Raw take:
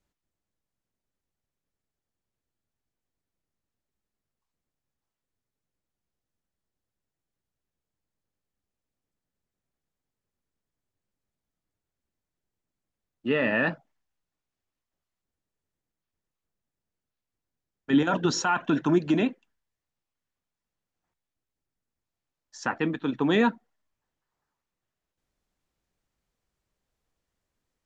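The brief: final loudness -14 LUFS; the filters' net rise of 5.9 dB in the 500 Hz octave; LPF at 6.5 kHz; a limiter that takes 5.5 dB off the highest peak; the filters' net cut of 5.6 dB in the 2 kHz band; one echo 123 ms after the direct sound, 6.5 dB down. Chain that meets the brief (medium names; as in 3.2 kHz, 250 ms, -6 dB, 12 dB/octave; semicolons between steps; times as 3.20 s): low-pass 6.5 kHz; peaking EQ 500 Hz +8 dB; peaking EQ 2 kHz -8 dB; peak limiter -13.5 dBFS; delay 123 ms -6.5 dB; trim +10.5 dB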